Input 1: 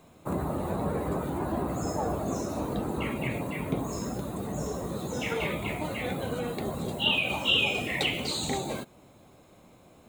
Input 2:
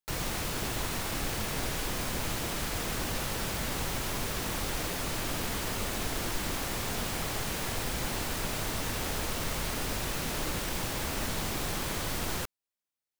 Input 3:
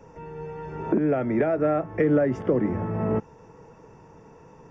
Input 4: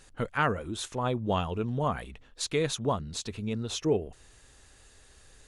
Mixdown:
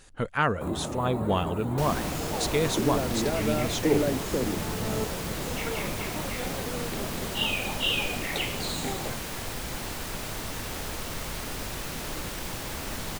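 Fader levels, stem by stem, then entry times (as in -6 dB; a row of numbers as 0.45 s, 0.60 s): -3.0 dB, -1.5 dB, -6.5 dB, +2.0 dB; 0.35 s, 1.70 s, 1.85 s, 0.00 s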